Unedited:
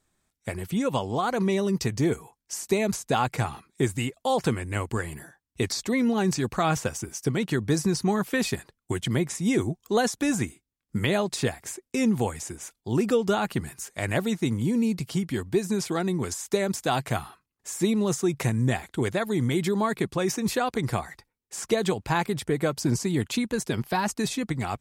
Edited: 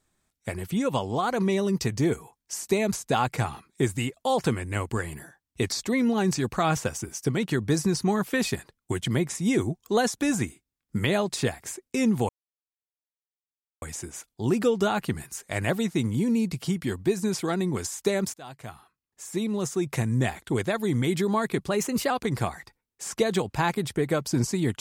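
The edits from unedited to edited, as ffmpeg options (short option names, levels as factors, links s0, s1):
-filter_complex "[0:a]asplit=5[s0][s1][s2][s3][s4];[s0]atrim=end=12.29,asetpts=PTS-STARTPTS,afade=t=out:st=12.286:d=0.004:c=hsin,apad=pad_dur=1.53[s5];[s1]atrim=start=12.29:end=16.81,asetpts=PTS-STARTPTS,afade=t=in:d=0.004:c=hsin,afade=t=out:st=4.516:d=0.004:c=hsin:silence=0.0841395[s6];[s2]atrim=start=16.81:end=20.154,asetpts=PTS-STARTPTS,afade=t=in:d=1.95:silence=0.0841395[s7];[s3]atrim=start=20.15:end=20.62,asetpts=PTS-STARTPTS,asetrate=48951,aresample=44100[s8];[s4]atrim=start=20.616[s9];[s5][s6][s7]concat=n=3:v=0:a=1[s10];[s10][s8]acrossfade=d=0.004:c1=hsin:c2=hsin[s11];[s11][s9]acrossfade=d=0.004:c1=hsin:c2=hsin"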